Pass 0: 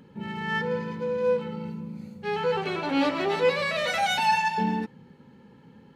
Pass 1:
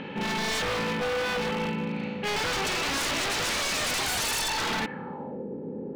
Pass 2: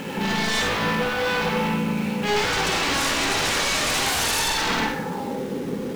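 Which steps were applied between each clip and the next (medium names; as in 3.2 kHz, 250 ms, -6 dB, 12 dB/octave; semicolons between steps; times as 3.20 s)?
spectral levelling over time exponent 0.6; low-pass sweep 2.8 kHz -> 420 Hz, 4.75–5.47 s; wavefolder -23.5 dBFS
in parallel at -10.5 dB: companded quantiser 2-bit; on the sum: reverberation RT60 0.50 s, pre-delay 42 ms, DRR 0.5 dB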